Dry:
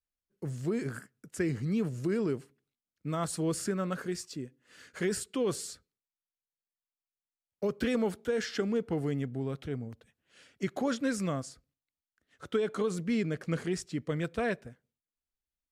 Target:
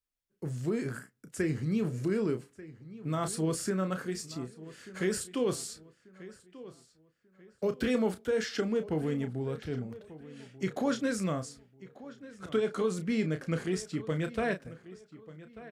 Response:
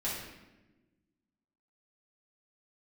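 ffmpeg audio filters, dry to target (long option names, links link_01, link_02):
-filter_complex "[0:a]asplit=2[link_01][link_02];[link_02]adelay=32,volume=-9dB[link_03];[link_01][link_03]amix=inputs=2:normalize=0,asplit=2[link_04][link_05];[link_05]adelay=1189,lowpass=frequency=3700:poles=1,volume=-17dB,asplit=2[link_06][link_07];[link_07]adelay=1189,lowpass=frequency=3700:poles=1,volume=0.34,asplit=2[link_08][link_09];[link_09]adelay=1189,lowpass=frequency=3700:poles=1,volume=0.34[link_10];[link_04][link_06][link_08][link_10]amix=inputs=4:normalize=0"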